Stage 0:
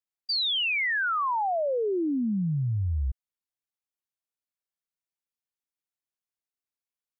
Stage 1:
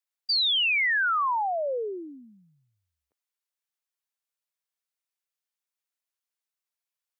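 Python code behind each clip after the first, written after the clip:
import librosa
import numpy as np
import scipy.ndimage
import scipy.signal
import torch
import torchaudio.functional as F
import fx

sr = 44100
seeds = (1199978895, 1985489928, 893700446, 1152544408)

y = scipy.signal.sosfilt(scipy.signal.butter(4, 490.0, 'highpass', fs=sr, output='sos'), x)
y = fx.peak_eq(y, sr, hz=670.0, db=-4.0, octaves=1.0)
y = y * 10.0 ** (3.0 / 20.0)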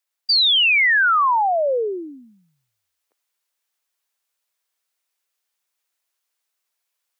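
y = scipy.signal.sosfilt(scipy.signal.butter(2, 360.0, 'highpass', fs=sr, output='sos'), x)
y = fx.rider(y, sr, range_db=4, speed_s=2.0)
y = y * 10.0 ** (7.5 / 20.0)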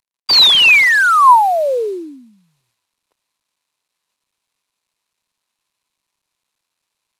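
y = fx.cvsd(x, sr, bps=64000)
y = fx.graphic_eq_31(y, sr, hz=(1000, 2500, 4000), db=(9, 5, 6))
y = y * 10.0 ** (3.5 / 20.0)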